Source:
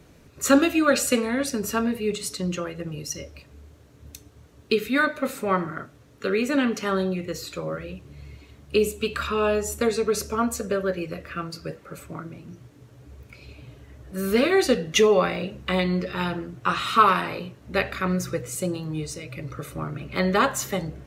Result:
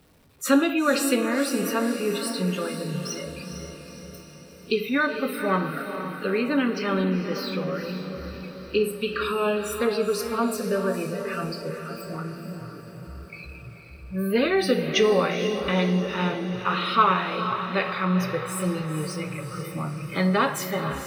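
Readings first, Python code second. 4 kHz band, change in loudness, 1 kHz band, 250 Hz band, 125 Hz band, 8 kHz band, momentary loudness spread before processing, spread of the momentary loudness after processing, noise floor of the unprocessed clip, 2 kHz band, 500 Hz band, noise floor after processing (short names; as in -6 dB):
0.0 dB, -1.0 dB, -0.5 dB, +0.5 dB, +2.0 dB, -3.5 dB, 16 LU, 16 LU, -53 dBFS, -0.5 dB, -1.0 dB, -45 dBFS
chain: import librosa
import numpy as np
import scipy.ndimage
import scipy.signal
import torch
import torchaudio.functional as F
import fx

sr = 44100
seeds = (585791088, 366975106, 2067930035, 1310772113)

p1 = x + 0.5 * 10.0 ** (-28.5 / 20.0) * np.sign(x)
p2 = fx.noise_reduce_blind(p1, sr, reduce_db=22)
p3 = fx.peak_eq(p2, sr, hz=6700.0, db=-8.5, octaves=0.26)
p4 = p3 + fx.echo_diffused(p3, sr, ms=470, feedback_pct=57, wet_db=-8, dry=0)
p5 = fx.rev_gated(p4, sr, seeds[0], gate_ms=250, shape='falling', drr_db=11.0)
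y = p5 * 10.0 ** (-3.0 / 20.0)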